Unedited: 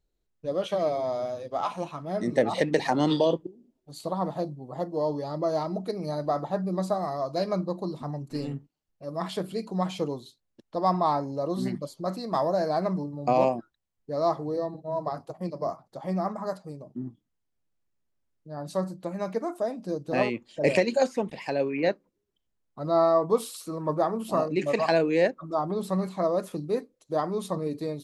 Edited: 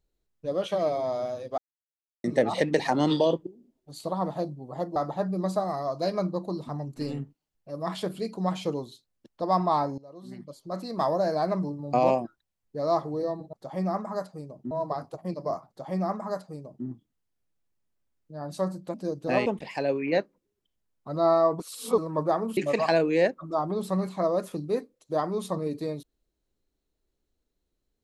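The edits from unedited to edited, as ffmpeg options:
-filter_complex "[0:a]asplit=12[s0][s1][s2][s3][s4][s5][s6][s7][s8][s9][s10][s11];[s0]atrim=end=1.58,asetpts=PTS-STARTPTS,afade=t=out:st=1.576:d=0.004:c=hsin[s12];[s1]atrim=start=1.58:end=2.24,asetpts=PTS-STARTPTS,volume=0[s13];[s2]atrim=start=2.24:end=4.962,asetpts=PTS-STARTPTS,afade=t=in:d=0.004:c=hsin[s14];[s3]atrim=start=6.298:end=11.32,asetpts=PTS-STARTPTS,afade=t=out:st=5.018:d=0.004:c=hsin:silence=0.112202[s15];[s4]atrim=start=11.32:end=14.872,asetpts=PTS-STARTPTS,afade=t=in:d=0.95:c=qua:silence=0.112202[s16];[s5]atrim=start=15.838:end=17.022[s17];[s6]atrim=start=14.868:end=19.102[s18];[s7]atrim=start=19.778:end=20.302[s19];[s8]atrim=start=21.168:end=23.312[s20];[s9]atrim=start=23.308:end=23.692,asetpts=PTS-STARTPTS,areverse[s21];[s10]atrim=start=23.688:end=24.282[s22];[s11]atrim=start=24.568[s23];[s12][s13][s14]concat=n=3:v=0:a=1[s24];[s15][s16]concat=n=2:v=0:a=1[s25];[s24][s25]acrossfade=d=0.004:c1=hsin:c2=hsin[s26];[s26][s17]acrossfade=d=0.004:c1=hsin:c2=hsin[s27];[s27][s18]acrossfade=d=0.004:c1=hsin:c2=hsin[s28];[s28][s19]acrossfade=d=0.004:c1=hsin:c2=hsin[s29];[s29][s20]acrossfade=d=0.004:c1=hsin:c2=hsin[s30];[s30][s21]acrossfade=d=0.004:c1=hsin:c2=hsin[s31];[s31][s22]acrossfade=d=0.004:c1=hsin:c2=hsin[s32];[s32][s23]acrossfade=d=0.004:c1=hsin:c2=hsin"

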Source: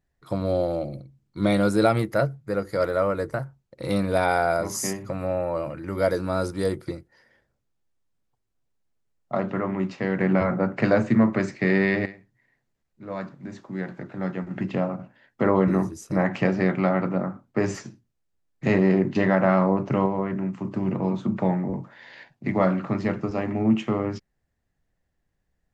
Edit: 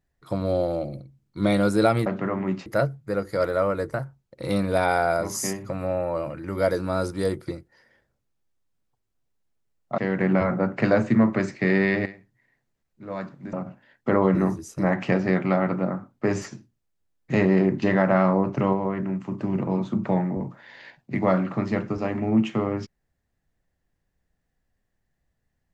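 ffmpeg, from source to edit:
-filter_complex "[0:a]asplit=5[s0][s1][s2][s3][s4];[s0]atrim=end=2.062[s5];[s1]atrim=start=9.378:end=9.982[s6];[s2]atrim=start=2.058:end=9.382[s7];[s3]atrim=start=9.978:end=13.532[s8];[s4]atrim=start=14.858[s9];[s5][s6]acrossfade=d=0.004:c1=hsin:c2=hsin[s10];[s10][s7]acrossfade=d=0.004:c1=hsin:c2=hsin[s11];[s11][s8]acrossfade=d=0.004:c1=hsin:c2=hsin[s12];[s12][s9]acrossfade=d=0.004:c1=hsin:c2=hsin"

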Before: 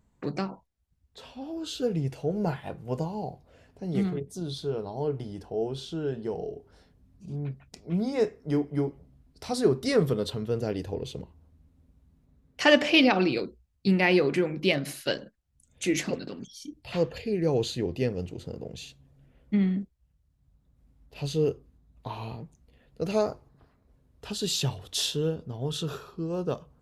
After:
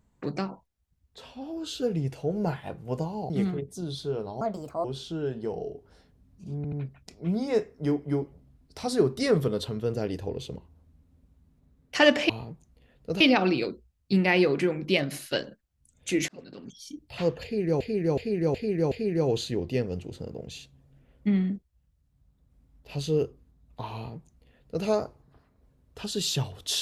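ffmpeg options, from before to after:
-filter_complex "[0:a]asplit=13[s0][s1][s2][s3][s4][s5][s6][s7][s8][s9][s10][s11][s12];[s0]atrim=end=3.302[s13];[s1]atrim=start=3.888:end=5.004[s14];[s2]atrim=start=5:end=5.66,asetpts=PTS-STARTPTS,asetrate=67032,aresample=44100[s15];[s3]atrim=start=5.656:end=7.462[s16];[s4]atrim=start=7.378:end=7.462[s17];[s5]atrim=start=7.378:end=12.952[s18];[s6]atrim=start=22.208:end=23.122[s19];[s7]atrim=start=12.948:end=16.03,asetpts=PTS-STARTPTS,afade=t=out:st=3.078:d=0.004:c=hsin[s20];[s8]atrim=start=16.03:end=17.552,asetpts=PTS-STARTPTS,afade=t=in:d=0.53[s21];[s9]atrim=start=17.178:end=17.552[s22];[s10]atrim=start=17.178:end=17.552[s23];[s11]atrim=start=17.178:end=17.552[s24];[s12]atrim=start=17.178[s25];[s13][s14]acrossfade=d=0.004:c1=hsin:c2=hsin[s26];[s26][s15]acrossfade=d=0.004:c1=hsin:c2=hsin[s27];[s27][s16]acrossfade=d=0.004:c1=hsin:c2=hsin[s28];[s28][s17]acrossfade=d=0.004:c1=hsin:c2=hsin[s29];[s29][s18]acrossfade=d=0.004:c1=hsin:c2=hsin[s30];[s30][s19]acrossfade=d=0.004:c1=hsin:c2=hsin[s31];[s20][s21]concat=n=2:v=0:a=1[s32];[s31][s32]acrossfade=d=0.004:c1=hsin:c2=hsin[s33];[s33][s22]acrossfade=d=0.004:c1=hsin:c2=hsin[s34];[s34][s23]acrossfade=d=0.004:c1=hsin:c2=hsin[s35];[s35][s24]acrossfade=d=0.004:c1=hsin:c2=hsin[s36];[s36][s25]acrossfade=d=0.004:c1=hsin:c2=hsin"

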